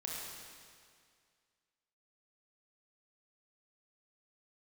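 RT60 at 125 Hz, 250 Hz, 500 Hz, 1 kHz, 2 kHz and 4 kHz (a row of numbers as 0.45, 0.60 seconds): 2.1, 2.1, 2.1, 2.1, 2.1, 2.0 seconds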